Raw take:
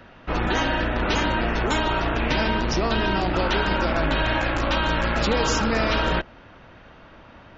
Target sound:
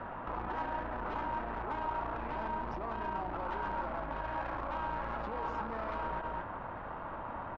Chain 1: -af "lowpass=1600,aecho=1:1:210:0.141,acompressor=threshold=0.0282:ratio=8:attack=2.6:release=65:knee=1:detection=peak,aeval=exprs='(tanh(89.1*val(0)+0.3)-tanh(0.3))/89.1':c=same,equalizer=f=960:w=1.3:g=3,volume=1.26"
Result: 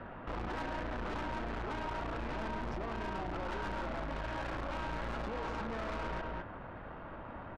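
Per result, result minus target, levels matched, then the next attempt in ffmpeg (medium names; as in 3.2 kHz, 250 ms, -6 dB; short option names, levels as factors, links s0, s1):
compression: peak gain reduction -7.5 dB; 1 kHz band -3.0 dB
-af "lowpass=1600,aecho=1:1:210:0.141,acompressor=threshold=0.0106:ratio=8:attack=2.6:release=65:knee=1:detection=peak,aeval=exprs='(tanh(89.1*val(0)+0.3)-tanh(0.3))/89.1':c=same,equalizer=f=960:w=1.3:g=3,volume=1.26"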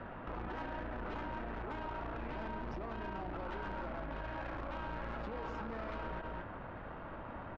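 1 kHz band -3.0 dB
-af "lowpass=1600,aecho=1:1:210:0.141,acompressor=threshold=0.0106:ratio=8:attack=2.6:release=65:knee=1:detection=peak,aeval=exprs='(tanh(89.1*val(0)+0.3)-tanh(0.3))/89.1':c=same,equalizer=f=960:w=1.3:g=12,volume=1.26"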